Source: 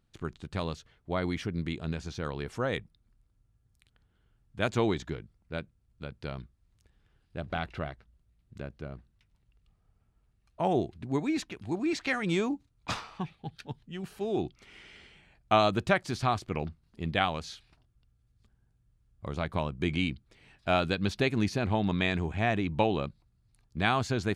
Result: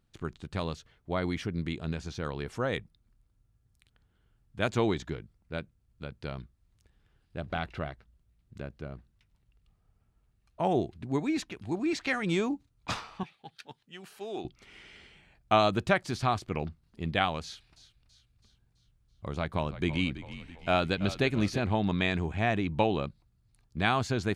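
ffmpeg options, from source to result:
-filter_complex "[0:a]asettb=1/sr,asplit=3[s0][s1][s2];[s0]atrim=end=13.234[s3];[s1]atrim=start=13.23:end=14.45,asetpts=PTS-STARTPTS,afade=t=in:d=0.004:c=qsin,afade=t=out:st=1.216:d=0.004:c=qsin,highpass=f=790:p=1[s4];[s2]atrim=start=14.446[s5];[s3][s4]acrossfade=d=0.004:c1=hsin:c2=qsin[s6];[s6][s5]acrossfade=d=0.004:c1=qsin:c2=hsin,asettb=1/sr,asplit=3[s7][s8][s9];[s7]atrim=end=17.434[s10];[s8]atrim=start=17.43:end=21.6,asetpts=PTS-STARTPTS,afade=t=in:d=0.004:c=qsin,afade=t=out:st=4.166:d=0.004:c=qsin,asplit=6[s11][s12][s13][s14][s15][s16];[s12]adelay=330,afreqshift=-46,volume=0.2[s17];[s13]adelay=660,afreqshift=-92,volume=0.107[s18];[s14]adelay=990,afreqshift=-138,volume=0.0582[s19];[s15]adelay=1320,afreqshift=-184,volume=0.0313[s20];[s16]adelay=1650,afreqshift=-230,volume=0.017[s21];[s11][s17][s18][s19][s20][s21]amix=inputs=6:normalize=0,atrim=end_sample=183897[s22];[s9]atrim=start=21.596[s23];[s10][s22]acrossfade=d=0.004:c1=hsin:c2=qsin[s24];[s24][s23]acrossfade=d=0.004:c1=qsin:c2=hsin"

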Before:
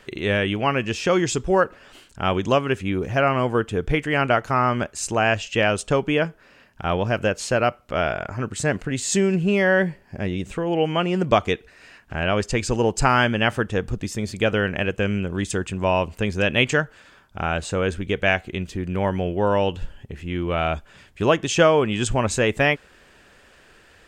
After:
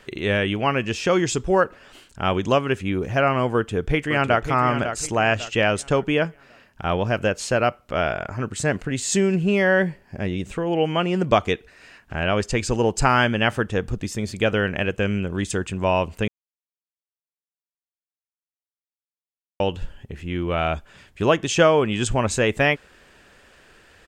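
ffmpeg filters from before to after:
-filter_complex "[0:a]asplit=2[s0][s1];[s1]afade=t=in:st=3.55:d=0.01,afade=t=out:st=4.5:d=0.01,aecho=0:1:550|1100|1650|2200:0.375837|0.131543|0.0460401|0.016114[s2];[s0][s2]amix=inputs=2:normalize=0,asplit=3[s3][s4][s5];[s3]atrim=end=16.28,asetpts=PTS-STARTPTS,afade=t=out:st=16.276:d=0.004:c=hsin[s6];[s4]atrim=start=16.28:end=19.6,asetpts=PTS-STARTPTS,volume=0[s7];[s5]atrim=start=19.6,asetpts=PTS-STARTPTS,afade=t=in:d=0.004:c=hsin[s8];[s6][s7][s8]concat=n=3:v=0:a=1"

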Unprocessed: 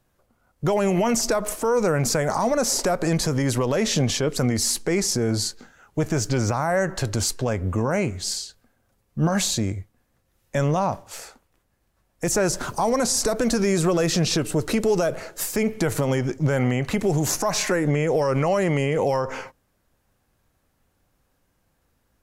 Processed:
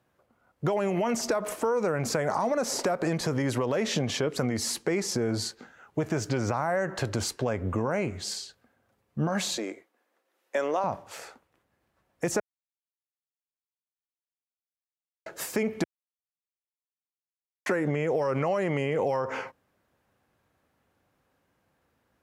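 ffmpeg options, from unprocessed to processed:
-filter_complex "[0:a]asettb=1/sr,asplit=3[s0][s1][s2];[s0]atrim=end=9.574[s3];[s1]atrim=start=9.57:end=10.84,asetpts=PTS-STARTPTS,afade=t=in:d=0.004:c=qsin,afade=t=out:st=1.266:d=0.004:c=qsin,highpass=f=320:w=0.5412,highpass=f=320:w=1.3066[s4];[s2]atrim=start=10.836[s5];[s3][s4]acrossfade=d=0.004:c1=hsin:c2=qsin[s6];[s6][s5]acrossfade=d=0.004:c1=qsin:c2=hsin,asplit=5[s7][s8][s9][s10][s11];[s7]atrim=end=12.4,asetpts=PTS-STARTPTS,afade=t=out:st=12.396:d=0.004:c=hsin[s12];[s8]atrim=start=12.4:end=15.26,asetpts=PTS-STARTPTS,volume=0[s13];[s9]atrim=start=15.26:end=15.84,asetpts=PTS-STARTPTS,afade=t=in:d=0.004:c=hsin,afade=t=out:st=0.576:d=0.004:c=hsin[s14];[s10]atrim=start=15.84:end=17.66,asetpts=PTS-STARTPTS,volume=0[s15];[s11]atrim=start=17.66,asetpts=PTS-STARTPTS,afade=t=in:d=0.004:c=hsin[s16];[s12][s13][s14][s15][s16]concat=n=5:v=0:a=1,highpass=82,bass=f=250:g=-4,treble=f=4000:g=-9,acompressor=threshold=0.0708:ratio=6"

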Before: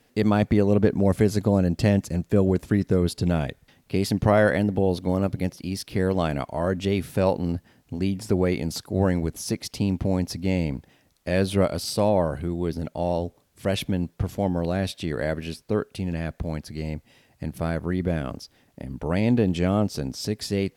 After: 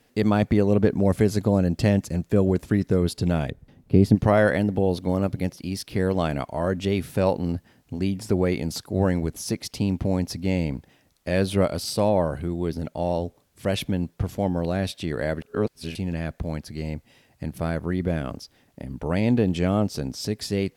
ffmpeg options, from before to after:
-filter_complex "[0:a]asplit=3[s0][s1][s2];[s0]afade=t=out:st=3.49:d=0.02[s3];[s1]tiltshelf=f=740:g=9.5,afade=t=in:st=3.49:d=0.02,afade=t=out:st=4.14:d=0.02[s4];[s2]afade=t=in:st=4.14:d=0.02[s5];[s3][s4][s5]amix=inputs=3:normalize=0,asplit=3[s6][s7][s8];[s6]atrim=end=15.422[s9];[s7]atrim=start=15.418:end=15.952,asetpts=PTS-STARTPTS,areverse[s10];[s8]atrim=start=15.948[s11];[s9][s10]acrossfade=d=0.004:c1=hsin:c2=hsin[s12];[s12][s11]acrossfade=d=0.004:c1=hsin:c2=hsin"

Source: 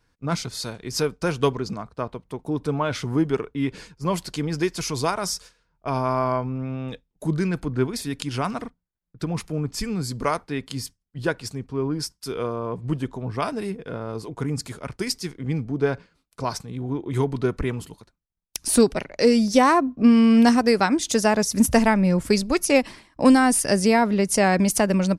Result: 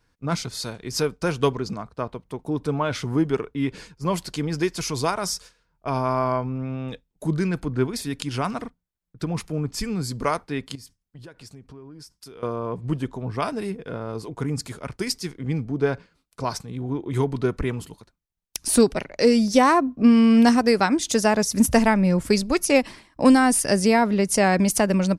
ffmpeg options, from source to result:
-filter_complex "[0:a]asettb=1/sr,asplit=3[s0][s1][s2];[s0]atrim=end=10.754[s3];[s1]atrim=start=10.75:end=12.43,asetpts=PTS-STARTPTS,afade=t=in:d=0.004:c=qsin,afade=t=out:st=1.676:d=0.004:c=qsin,acompressor=threshold=0.01:ratio=8:attack=3.2:release=140:knee=1:detection=peak[s4];[s2]atrim=start=12.426[s5];[s3][s4]acrossfade=d=0.004:c1=hsin:c2=qsin[s6];[s6][s5]acrossfade=d=0.004:c1=qsin:c2=hsin"

